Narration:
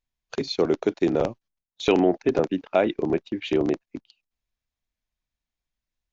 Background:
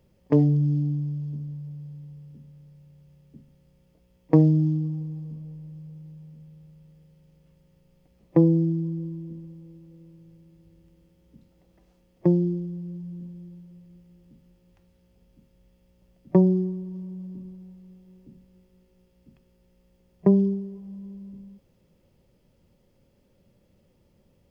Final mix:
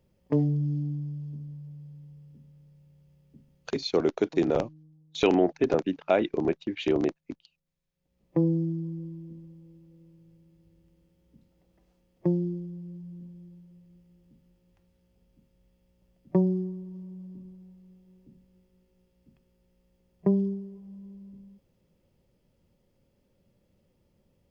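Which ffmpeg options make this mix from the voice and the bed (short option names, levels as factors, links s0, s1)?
-filter_complex "[0:a]adelay=3350,volume=0.75[s0];[1:a]volume=6.68,afade=t=out:st=3.54:d=0.67:silence=0.0794328,afade=t=in:st=7.94:d=0.53:silence=0.0794328[s1];[s0][s1]amix=inputs=2:normalize=0"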